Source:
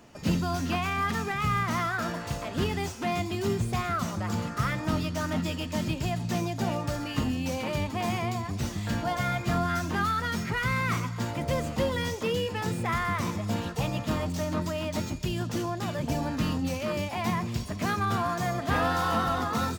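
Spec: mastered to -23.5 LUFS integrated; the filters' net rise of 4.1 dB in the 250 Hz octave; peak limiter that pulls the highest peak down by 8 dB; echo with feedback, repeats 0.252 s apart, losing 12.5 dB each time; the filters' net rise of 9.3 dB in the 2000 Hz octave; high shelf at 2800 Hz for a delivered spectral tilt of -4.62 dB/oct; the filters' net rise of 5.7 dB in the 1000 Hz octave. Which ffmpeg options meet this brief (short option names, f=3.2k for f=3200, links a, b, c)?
-af "equalizer=f=250:t=o:g=5,equalizer=f=1k:t=o:g=3.5,equalizer=f=2k:t=o:g=8,highshelf=f=2.8k:g=6,alimiter=limit=-17.5dB:level=0:latency=1,aecho=1:1:252|504|756:0.237|0.0569|0.0137,volume=3dB"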